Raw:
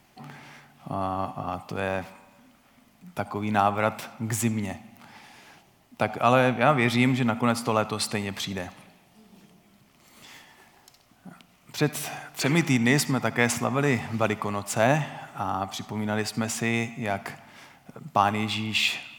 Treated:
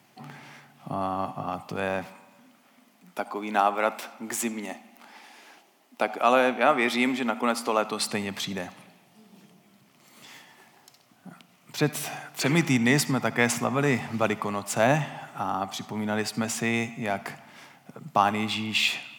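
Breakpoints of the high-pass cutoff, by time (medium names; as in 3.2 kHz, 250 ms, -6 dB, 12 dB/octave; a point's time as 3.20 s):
high-pass 24 dB/octave
1.96 s 110 Hz
3.25 s 250 Hz
7.76 s 250 Hz
8.22 s 120 Hz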